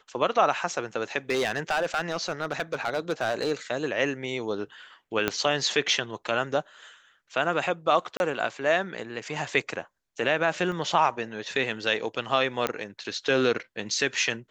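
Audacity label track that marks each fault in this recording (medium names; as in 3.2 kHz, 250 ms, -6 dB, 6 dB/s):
1.300000	3.520000	clipped -21 dBFS
5.280000	5.280000	pop -9 dBFS
8.170000	8.200000	dropout 31 ms
10.720000	10.720000	dropout 2.9 ms
12.670000	12.670000	pop -11 dBFS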